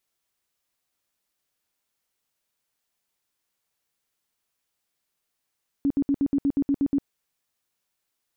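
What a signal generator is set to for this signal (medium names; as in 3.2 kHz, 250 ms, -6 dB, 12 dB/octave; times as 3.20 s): tone bursts 280 Hz, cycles 15, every 0.12 s, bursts 10, -18.5 dBFS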